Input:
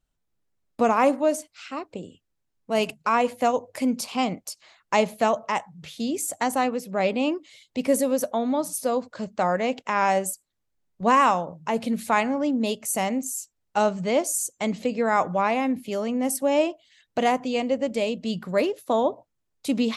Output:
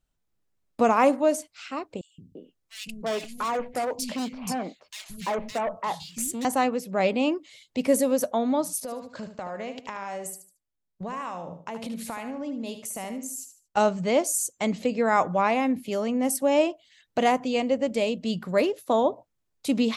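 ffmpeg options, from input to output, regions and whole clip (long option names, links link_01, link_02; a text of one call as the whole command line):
ffmpeg -i in.wav -filter_complex "[0:a]asettb=1/sr,asplit=3[link_01][link_02][link_03];[link_01]atrim=end=2.014[link_04];[link_02]atrim=start=2.01:end=6.45,asetpts=PTS-STARTPTS,afade=type=in:duration=0.004:curve=qsin,afade=type=out:start_time=4.436:duration=0.004:curve=qsin,asoftclip=type=hard:threshold=-24dB,acrossover=split=210|2400[link_05][link_06][link_07];[link_05]adelay=170[link_08];[link_06]adelay=340[link_09];[link_08][link_09][link_07]amix=inputs=3:normalize=0,atrim=end_sample=195804[link_10];[link_03]atrim=start=6.446[link_11];[link_04][link_10]acrossfade=duration=0.004:curve1=hsin:curve2=qsin[link_12];[link_12][link_11]acrossfade=duration=0.004:curve1=qsin:curve2=hsin,asettb=1/sr,asplit=3[link_13][link_14][link_15];[link_13]atrim=end=8.804[link_16];[link_14]atrim=start=8.8:end=13.77,asetpts=PTS-STARTPTS,afade=type=in:duration=0.004:curve=qsin,afade=type=out:start_time=4.966:duration=0.004:curve=qsin,agate=range=-11dB:threshold=-45dB:ratio=16:release=100:detection=peak,acompressor=threshold=-32dB:ratio=5:attack=3.2:release=140:knee=1:detection=peak,aecho=1:1:75|150|225:0.335|0.1|0.0301,atrim=end_sample=219177[link_17];[link_15]atrim=start=13.766[link_18];[link_16][link_17]acrossfade=duration=0.004:curve1=hsin:curve2=qsin[link_19];[link_19][link_18]acrossfade=duration=0.004:curve1=qsin:curve2=hsin" out.wav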